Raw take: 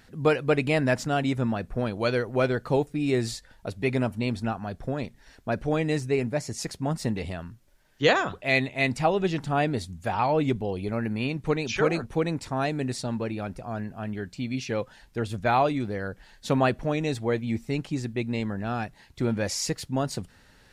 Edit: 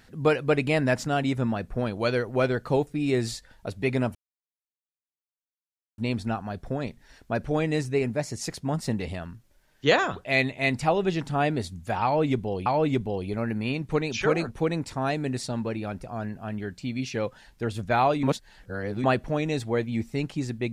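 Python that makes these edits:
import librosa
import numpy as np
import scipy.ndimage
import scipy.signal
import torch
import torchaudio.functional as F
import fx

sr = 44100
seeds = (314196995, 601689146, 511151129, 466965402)

y = fx.edit(x, sr, fx.insert_silence(at_s=4.15, length_s=1.83),
    fx.repeat(start_s=10.21, length_s=0.62, count=2),
    fx.reverse_span(start_s=15.78, length_s=0.81), tone=tone)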